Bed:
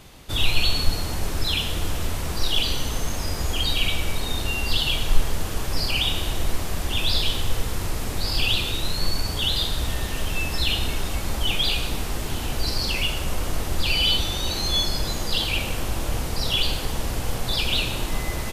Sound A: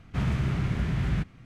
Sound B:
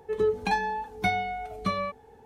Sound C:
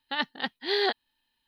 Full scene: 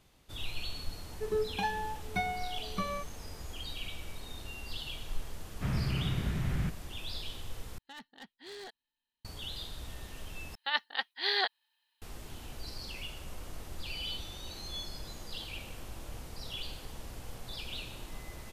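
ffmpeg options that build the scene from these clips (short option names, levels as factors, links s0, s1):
-filter_complex "[3:a]asplit=2[s0][s1];[0:a]volume=0.126[s2];[s0]asoftclip=type=tanh:threshold=0.0398[s3];[s1]highpass=770[s4];[s2]asplit=3[s5][s6][s7];[s5]atrim=end=7.784[s8];[s3]atrim=end=1.47,asetpts=PTS-STARTPTS,volume=0.188[s9];[s6]atrim=start=9.246:end=10.554[s10];[s4]atrim=end=1.47,asetpts=PTS-STARTPTS,volume=0.891[s11];[s7]atrim=start=12.016[s12];[2:a]atrim=end=2.25,asetpts=PTS-STARTPTS,volume=0.447,afade=t=in:d=0.004:c=hsin,afade=t=out:st=2.246:d=0.004:c=hsin,adelay=1120[s13];[1:a]atrim=end=1.45,asetpts=PTS-STARTPTS,volume=0.531,afade=t=in:d=0.004:c=hsin,afade=t=out:st=1.446:d=0.004:c=hsin,adelay=5470[s14];[s8][s9]acrossfade=d=0.004:c1=hsin:c2=hsin[s15];[s15][s10]acrossfade=d=0.004:c1=hsin:c2=hsin[s16];[s16][s11]acrossfade=d=0.004:c1=hsin:c2=hsin[s17];[s17][s12]acrossfade=d=0.004:c1=hsin:c2=hsin[s18];[s18][s13][s14]amix=inputs=3:normalize=0"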